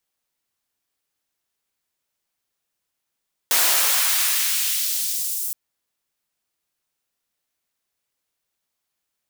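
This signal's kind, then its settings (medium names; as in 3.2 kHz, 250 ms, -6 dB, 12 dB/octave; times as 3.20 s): swept filtered noise white, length 2.02 s highpass, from 450 Hz, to 9 kHz, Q 0.83, exponential, gain ramp -8 dB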